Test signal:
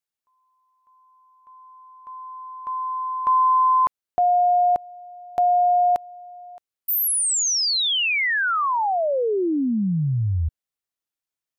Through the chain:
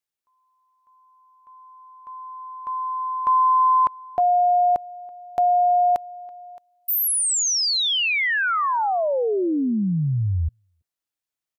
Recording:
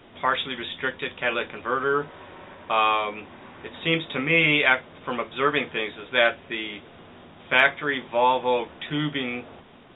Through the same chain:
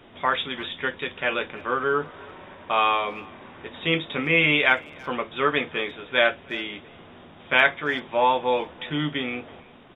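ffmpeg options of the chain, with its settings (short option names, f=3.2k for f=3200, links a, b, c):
-filter_complex "[0:a]asplit=2[a][b];[b]adelay=330,highpass=300,lowpass=3.4k,asoftclip=type=hard:threshold=-13.5dB,volume=-23dB[c];[a][c]amix=inputs=2:normalize=0"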